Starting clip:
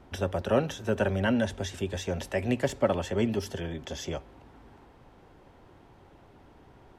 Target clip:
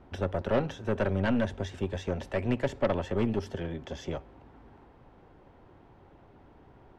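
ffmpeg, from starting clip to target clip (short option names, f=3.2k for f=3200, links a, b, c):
-af "aemphasis=mode=reproduction:type=75fm,aeval=exprs='0.316*(cos(1*acos(clip(val(0)/0.316,-1,1)))-cos(1*PI/2))+0.0224*(cos(5*acos(clip(val(0)/0.316,-1,1)))-cos(5*PI/2))+0.0282*(cos(8*acos(clip(val(0)/0.316,-1,1)))-cos(8*PI/2))':c=same,volume=-4dB"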